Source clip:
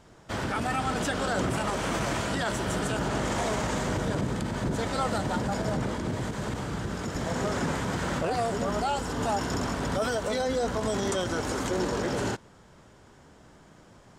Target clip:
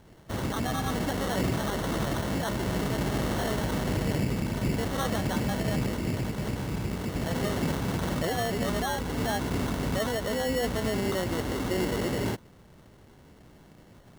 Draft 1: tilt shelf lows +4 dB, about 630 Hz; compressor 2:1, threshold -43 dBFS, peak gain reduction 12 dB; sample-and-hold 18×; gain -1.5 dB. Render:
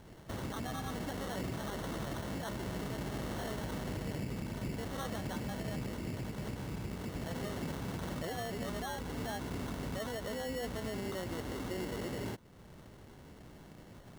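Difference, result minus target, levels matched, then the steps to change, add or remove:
compressor: peak gain reduction +12 dB
remove: compressor 2:1, threshold -43 dBFS, peak gain reduction 12 dB

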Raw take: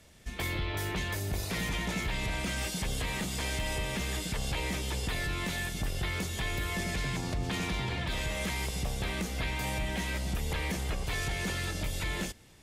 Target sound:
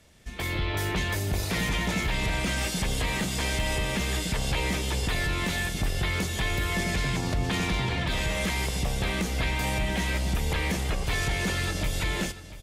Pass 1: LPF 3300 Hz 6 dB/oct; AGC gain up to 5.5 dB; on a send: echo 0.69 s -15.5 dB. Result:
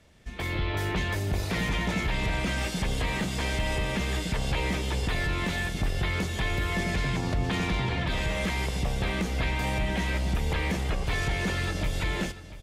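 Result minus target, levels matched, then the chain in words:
8000 Hz band -5.5 dB
LPF 12000 Hz 6 dB/oct; AGC gain up to 5.5 dB; on a send: echo 0.69 s -15.5 dB

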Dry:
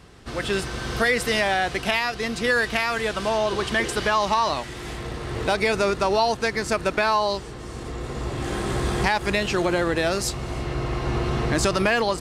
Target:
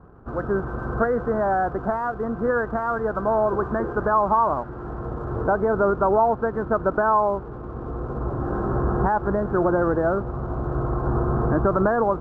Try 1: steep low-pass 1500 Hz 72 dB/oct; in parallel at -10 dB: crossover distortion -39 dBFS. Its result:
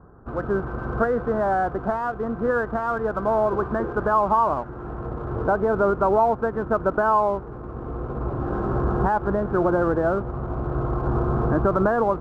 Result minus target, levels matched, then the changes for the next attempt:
crossover distortion: distortion +9 dB
change: crossover distortion -48 dBFS

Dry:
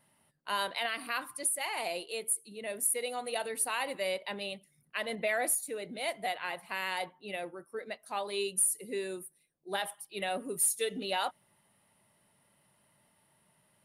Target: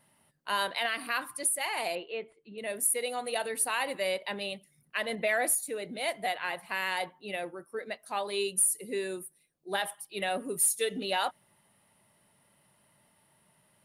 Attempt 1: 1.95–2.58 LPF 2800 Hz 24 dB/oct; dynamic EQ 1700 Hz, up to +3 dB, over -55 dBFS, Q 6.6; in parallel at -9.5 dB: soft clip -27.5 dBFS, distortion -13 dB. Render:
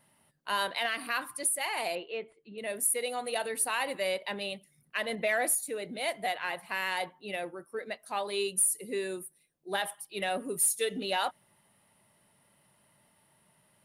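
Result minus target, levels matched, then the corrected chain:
soft clip: distortion +11 dB
1.95–2.58 LPF 2800 Hz 24 dB/oct; dynamic EQ 1700 Hz, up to +3 dB, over -55 dBFS, Q 6.6; in parallel at -9.5 dB: soft clip -19.5 dBFS, distortion -23 dB

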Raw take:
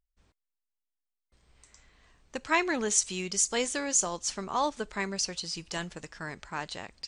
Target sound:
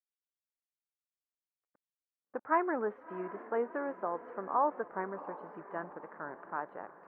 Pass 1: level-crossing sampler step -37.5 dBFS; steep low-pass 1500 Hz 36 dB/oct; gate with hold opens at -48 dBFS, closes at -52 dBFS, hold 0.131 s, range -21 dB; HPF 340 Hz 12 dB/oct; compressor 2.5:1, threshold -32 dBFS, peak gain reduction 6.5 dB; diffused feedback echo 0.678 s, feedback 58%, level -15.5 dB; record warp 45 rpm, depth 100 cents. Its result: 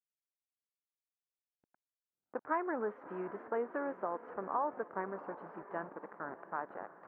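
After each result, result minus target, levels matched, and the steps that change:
compressor: peak gain reduction +6.5 dB; level-crossing sampler: distortion +7 dB
remove: compressor 2.5:1, threshold -32 dBFS, peak gain reduction 6.5 dB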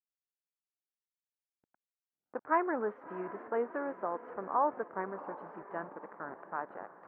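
level-crossing sampler: distortion +7 dB
change: level-crossing sampler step -44.5 dBFS

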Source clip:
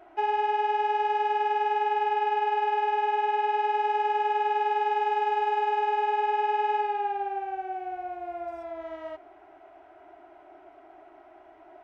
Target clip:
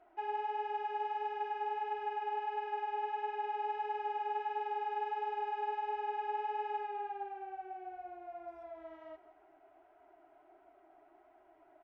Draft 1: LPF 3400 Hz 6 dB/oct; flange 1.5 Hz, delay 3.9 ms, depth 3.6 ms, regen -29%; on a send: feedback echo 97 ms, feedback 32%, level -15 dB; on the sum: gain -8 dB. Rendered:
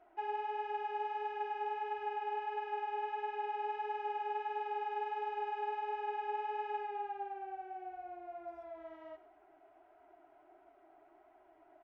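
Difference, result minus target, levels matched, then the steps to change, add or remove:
echo 70 ms early
change: feedback echo 0.167 s, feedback 32%, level -15 dB

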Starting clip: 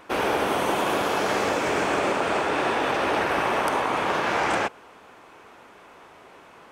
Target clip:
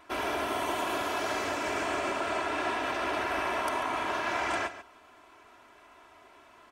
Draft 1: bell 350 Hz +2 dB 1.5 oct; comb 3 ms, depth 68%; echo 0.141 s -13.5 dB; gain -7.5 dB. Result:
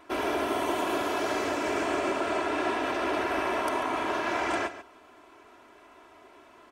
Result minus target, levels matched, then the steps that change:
250 Hz band +4.0 dB
change: bell 350 Hz -4.5 dB 1.5 oct

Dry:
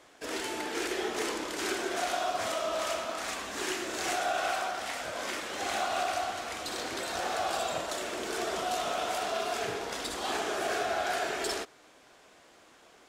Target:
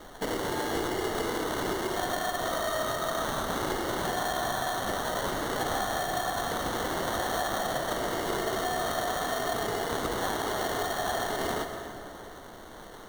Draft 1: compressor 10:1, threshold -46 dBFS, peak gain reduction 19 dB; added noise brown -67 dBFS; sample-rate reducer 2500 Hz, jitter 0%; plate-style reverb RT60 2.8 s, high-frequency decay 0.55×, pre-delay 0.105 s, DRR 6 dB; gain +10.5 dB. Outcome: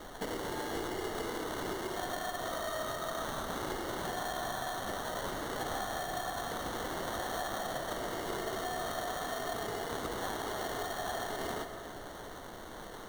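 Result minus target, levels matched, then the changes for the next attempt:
compressor: peak gain reduction +6.5 dB
change: compressor 10:1, threshold -38.5 dBFS, peak gain reduction 12.5 dB

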